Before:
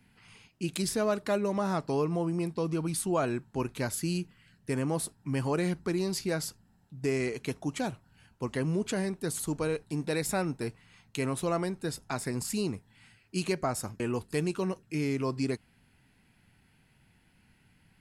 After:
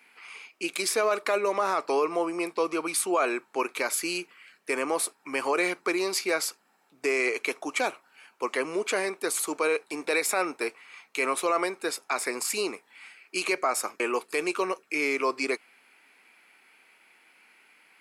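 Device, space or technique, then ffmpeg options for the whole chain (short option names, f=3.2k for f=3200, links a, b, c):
laptop speaker: -af "highpass=f=370:w=0.5412,highpass=f=370:w=1.3066,equalizer=f=1.2k:t=o:w=0.39:g=8,equalizer=f=2.3k:t=o:w=0.26:g=11,alimiter=limit=-22dB:level=0:latency=1:release=24,volume=6.5dB"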